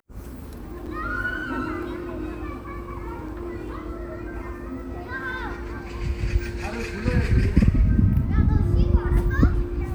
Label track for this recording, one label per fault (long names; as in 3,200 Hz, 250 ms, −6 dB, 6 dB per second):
0.860000	0.870000	drop-out 6.2 ms